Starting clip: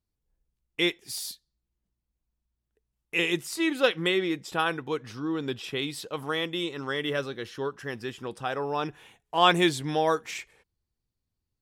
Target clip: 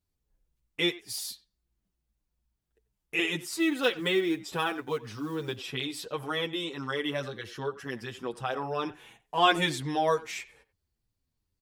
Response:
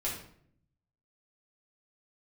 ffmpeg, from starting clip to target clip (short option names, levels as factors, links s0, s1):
-filter_complex "[0:a]asplit=2[s0][s1];[s1]acompressor=threshold=0.00794:ratio=6,volume=0.75[s2];[s0][s2]amix=inputs=2:normalize=0,asettb=1/sr,asplit=3[s3][s4][s5];[s3]atrim=end=3.494[s6];[s4]atrim=start=3.49:end=5.57,asetpts=PTS-STARTPTS,afade=t=in:d=0.004:c=qsin,afade=t=out:st=2.076:d=0.004:c=qsin,acrusher=bits=7:mode=log:mix=0:aa=0.000001[s7];[s5]atrim=start=5.566[s8];[s6][s7]acrossfade=d=0.004:c1=hsin:c2=qsin[s9];[s9][s8]acrossfade=d=0.004:c1=qsin:c2=hsin,asplit=2[s10][s11];[s11]adelay=90,highpass=300,lowpass=3400,asoftclip=type=hard:threshold=0.178,volume=0.141[s12];[s10][s12]amix=inputs=2:normalize=0,asplit=2[s13][s14];[s14]adelay=7.3,afreqshift=-2.7[s15];[s13][s15]amix=inputs=2:normalize=1"